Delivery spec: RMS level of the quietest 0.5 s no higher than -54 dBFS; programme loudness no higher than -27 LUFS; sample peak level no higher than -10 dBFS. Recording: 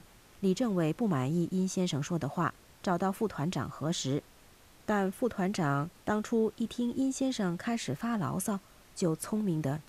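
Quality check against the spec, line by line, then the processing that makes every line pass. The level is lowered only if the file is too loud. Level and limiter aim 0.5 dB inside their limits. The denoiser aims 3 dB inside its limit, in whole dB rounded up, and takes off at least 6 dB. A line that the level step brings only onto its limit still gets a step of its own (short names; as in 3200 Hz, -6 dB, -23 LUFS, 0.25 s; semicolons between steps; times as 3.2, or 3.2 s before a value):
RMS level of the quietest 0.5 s -58 dBFS: OK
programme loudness -32.0 LUFS: OK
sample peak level -17.0 dBFS: OK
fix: none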